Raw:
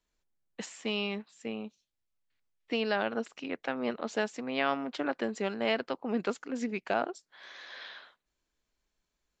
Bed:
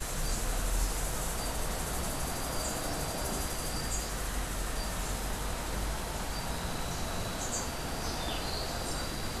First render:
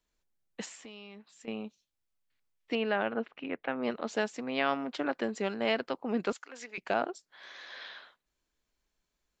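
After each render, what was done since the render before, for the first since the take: 0.75–1.48 s: compression 3:1, threshold -49 dBFS; 2.75–3.83 s: low-pass 3 kHz 24 dB/octave; 6.32–6.78 s: high-pass 850 Hz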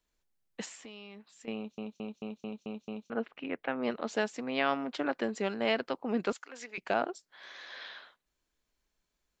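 1.56 s: stutter in place 0.22 s, 7 plays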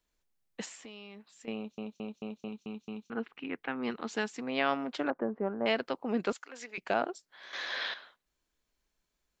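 2.48–4.42 s: peaking EQ 590 Hz -12.5 dB 0.42 oct; 5.10–5.66 s: low-pass 1.3 kHz 24 dB/octave; 7.53–7.94 s: gain +10 dB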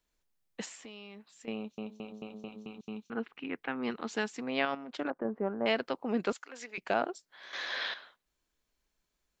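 1.86–2.81 s: de-hum 106.9 Hz, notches 18; 4.65–5.25 s: level held to a coarse grid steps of 11 dB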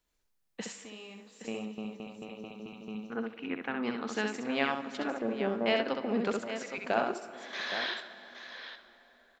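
multi-tap echo 66/818 ms -4.5/-10 dB; plate-style reverb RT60 4.6 s, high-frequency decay 0.65×, DRR 13 dB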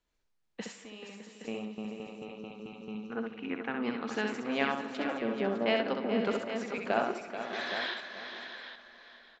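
distance through air 70 m; multi-tap echo 433/608 ms -10/-12.5 dB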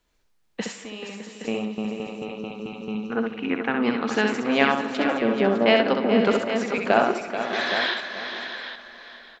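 trim +10.5 dB; peak limiter -3 dBFS, peak gain reduction 1 dB

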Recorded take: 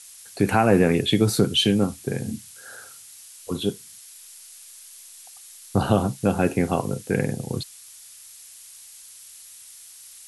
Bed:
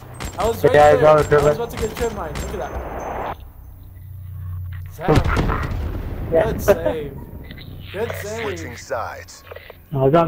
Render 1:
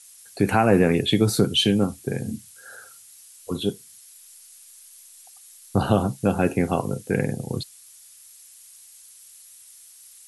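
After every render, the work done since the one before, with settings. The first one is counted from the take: noise reduction 6 dB, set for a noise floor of -46 dBFS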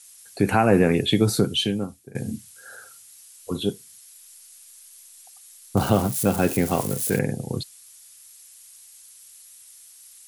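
1.31–2.15 s: fade out, to -21.5 dB; 5.77–7.19 s: zero-crossing glitches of -22 dBFS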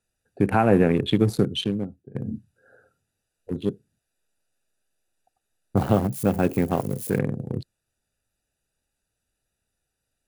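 local Wiener filter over 41 samples; peaking EQ 8.4 kHz -6.5 dB 2.8 oct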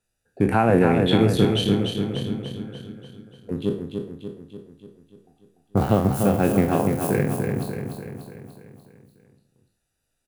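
spectral sustain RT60 0.41 s; feedback delay 293 ms, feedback 55%, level -5.5 dB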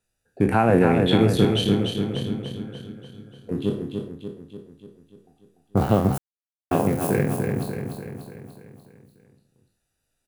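3.12–4.08 s: flutter echo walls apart 4.9 m, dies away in 0.26 s; 6.18–6.71 s: mute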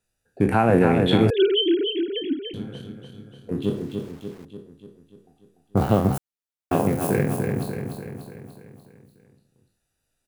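1.30–2.54 s: formants replaced by sine waves; 3.63–4.45 s: small samples zeroed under -44.5 dBFS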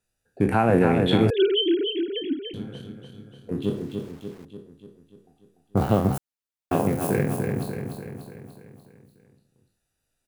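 trim -1.5 dB

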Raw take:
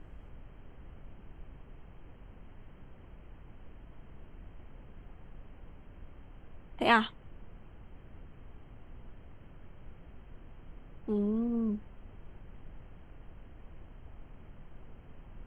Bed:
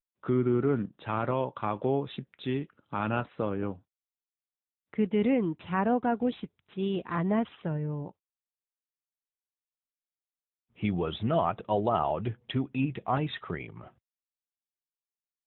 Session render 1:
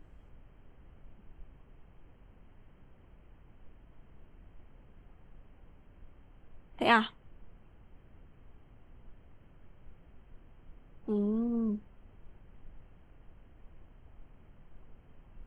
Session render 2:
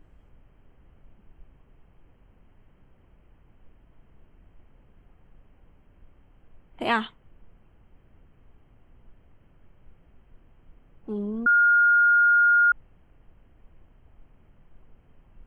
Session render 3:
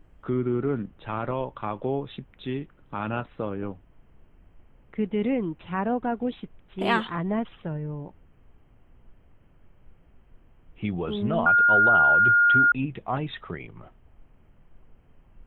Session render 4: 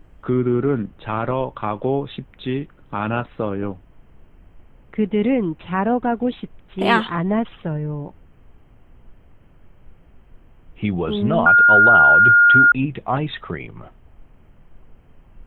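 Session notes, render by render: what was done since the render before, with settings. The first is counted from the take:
noise print and reduce 6 dB
11.46–12.72 s: bleep 1.42 kHz -15 dBFS
add bed 0 dB
trim +7 dB

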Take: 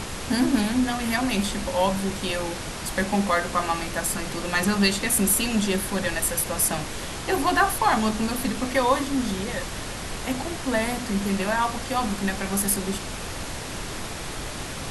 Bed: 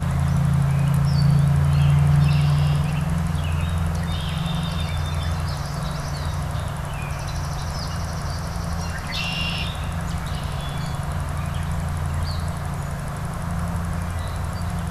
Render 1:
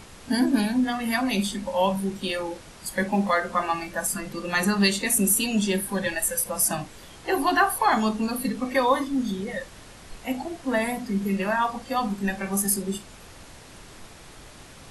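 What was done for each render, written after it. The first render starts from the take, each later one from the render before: noise print and reduce 13 dB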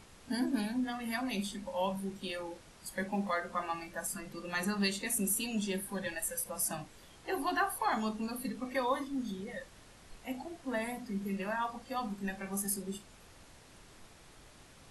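trim -11 dB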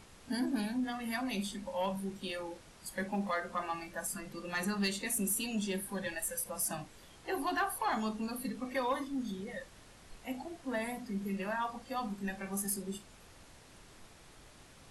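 saturation -23.5 dBFS, distortion -22 dB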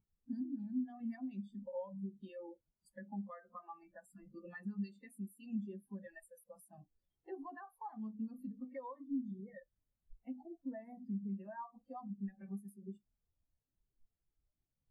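compression 12:1, threshold -40 dBFS, peak gain reduction 12 dB; spectral contrast expander 2.5:1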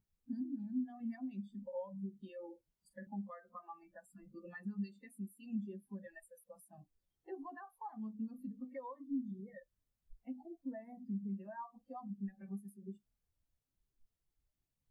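2.39–3.07 s: doubling 42 ms -11.5 dB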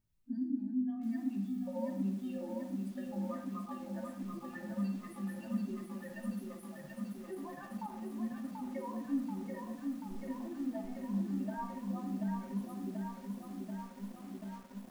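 simulated room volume 2100 m³, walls furnished, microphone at 2.7 m; bit-crushed delay 735 ms, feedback 80%, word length 10-bit, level -4 dB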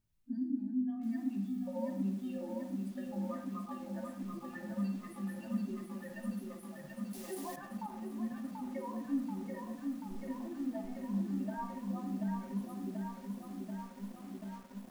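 7.13–7.56 s: FFT filter 330 Hz 0 dB, 830 Hz +7 dB, 1.2 kHz +1 dB, 5.6 kHz +14 dB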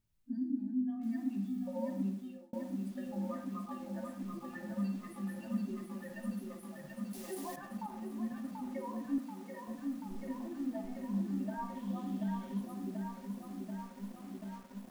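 2.03–2.53 s: fade out; 9.18–9.68 s: high-pass 430 Hz 6 dB/octave; 11.75–12.60 s: peaking EQ 3.3 kHz +8.5 dB 0.33 oct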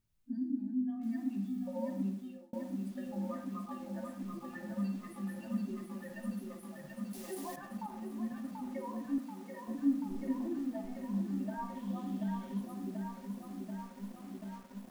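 9.68–10.59 s: peaking EQ 300 Hz +11.5 dB 0.47 oct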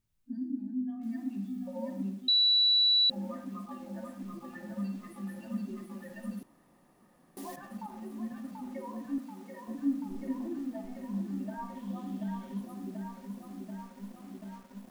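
2.28–3.10 s: bleep 3.94 kHz -21 dBFS; 6.43–7.37 s: room tone

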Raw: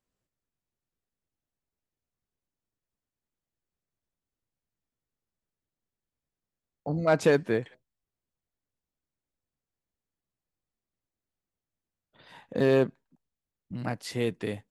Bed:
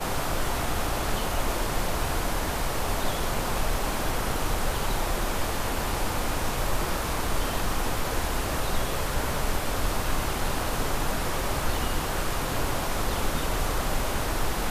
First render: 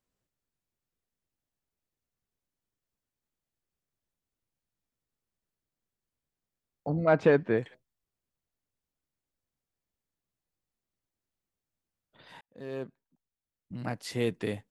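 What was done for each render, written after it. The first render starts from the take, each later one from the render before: 6.90–7.58 s: low-pass 2.5 kHz; 12.41–14.35 s: fade in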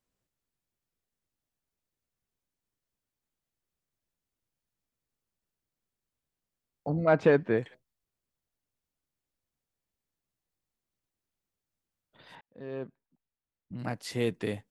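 12.35–13.79 s: distance through air 220 m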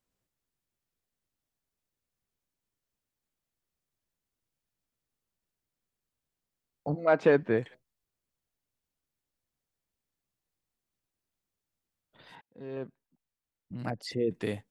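6.94–7.41 s: high-pass 500 Hz -> 120 Hz; 12.30–12.77 s: comb of notches 590 Hz; 13.90–14.31 s: resonances exaggerated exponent 2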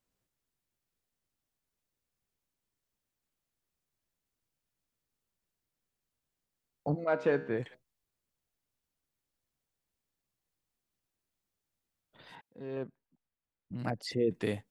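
7.04–7.60 s: feedback comb 68 Hz, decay 0.69 s; 12.83–13.74 s: distance through air 260 m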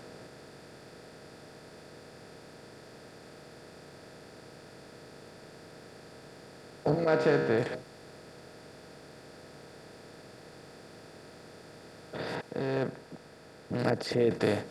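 spectral levelling over time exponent 0.4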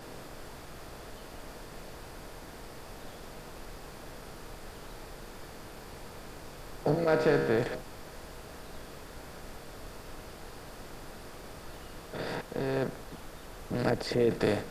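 add bed -20 dB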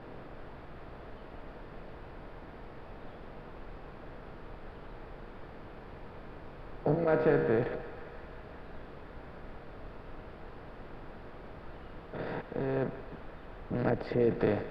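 distance through air 440 m; thinning echo 175 ms, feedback 80%, high-pass 520 Hz, level -14 dB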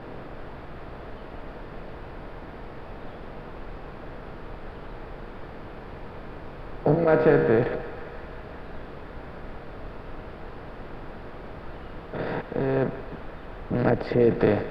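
trim +7.5 dB

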